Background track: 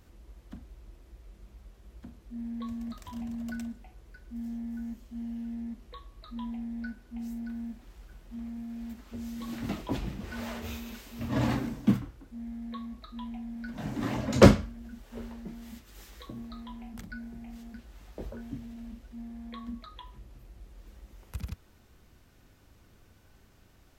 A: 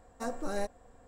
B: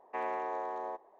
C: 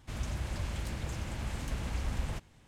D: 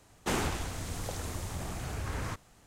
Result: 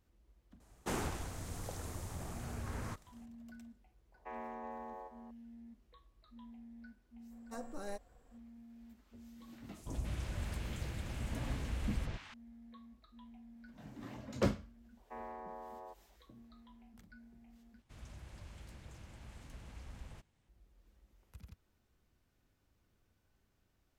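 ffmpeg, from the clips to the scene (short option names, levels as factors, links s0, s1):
-filter_complex "[2:a]asplit=2[s0][s1];[3:a]asplit=2[s2][s3];[0:a]volume=0.15[s4];[4:a]equalizer=f=3200:t=o:w=1.8:g=-4.5[s5];[s0]asplit=2[s6][s7];[s7]adelay=373.2,volume=0.316,highshelf=f=4000:g=-8.4[s8];[s6][s8]amix=inputs=2:normalize=0[s9];[1:a]highshelf=f=11000:g=5.5[s10];[s2]acrossover=split=960|5800[s11][s12][s13];[s11]adelay=110[s14];[s12]adelay=300[s15];[s14][s15][s13]amix=inputs=3:normalize=0[s16];[s1]lowpass=1900[s17];[s4]asplit=2[s18][s19];[s18]atrim=end=17.824[s20];[s3]atrim=end=2.67,asetpts=PTS-STARTPTS,volume=0.158[s21];[s19]atrim=start=20.486[s22];[s5]atrim=end=2.66,asetpts=PTS-STARTPTS,volume=0.501,afade=t=in:d=0.004:c=hsin,afade=t=out:st=2.656:d=0.004:c=hsin,adelay=600[s23];[s9]atrim=end=1.19,asetpts=PTS-STARTPTS,volume=0.299,afade=t=in:d=0.004:c=hsin,afade=t=out:st=1.186:d=0.004:c=hsin,adelay=4120[s24];[s10]atrim=end=1.07,asetpts=PTS-STARTPTS,volume=0.316,afade=t=in:d=0.004:c=hsin,afade=t=out:st=1.066:d=0.004:c=hsin,adelay=7310[s25];[s16]atrim=end=2.67,asetpts=PTS-STARTPTS,volume=0.631,afade=t=in:d=0.004:c=hsin,afade=t=out:st=2.666:d=0.004:c=hsin,adelay=9670[s26];[s17]atrim=end=1.19,asetpts=PTS-STARTPTS,volume=0.266,afade=t=in:d=0.004:c=hsin,afade=t=out:st=1.186:d=0.004:c=hsin,adelay=14970[s27];[s20][s21]acrossfade=d=0.004:c1=hsin:c2=hsin[s28];[s28][s22]acrossfade=d=0.004:c1=hsin:c2=hsin[s29];[s29][s23][s24][s25][s26][s27]amix=inputs=6:normalize=0"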